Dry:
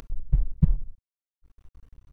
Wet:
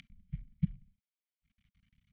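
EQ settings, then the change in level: vowel filter i; elliptic band-stop 200–710 Hz, stop band 40 dB; +10.0 dB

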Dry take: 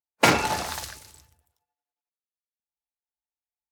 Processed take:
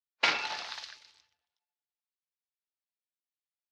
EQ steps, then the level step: band-pass filter 4.8 kHz, Q 1.3; distance through air 260 m; +6.0 dB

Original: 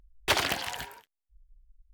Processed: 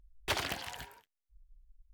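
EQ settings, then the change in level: bass shelf 140 Hz +6.5 dB; -8.0 dB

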